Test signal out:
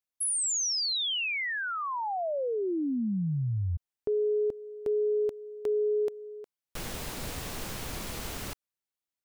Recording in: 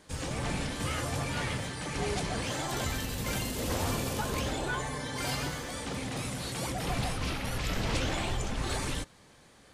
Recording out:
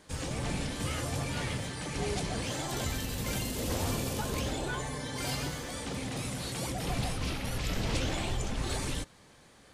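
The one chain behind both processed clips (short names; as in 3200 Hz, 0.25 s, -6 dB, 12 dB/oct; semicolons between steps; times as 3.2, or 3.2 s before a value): dynamic EQ 1300 Hz, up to -4 dB, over -42 dBFS, Q 0.71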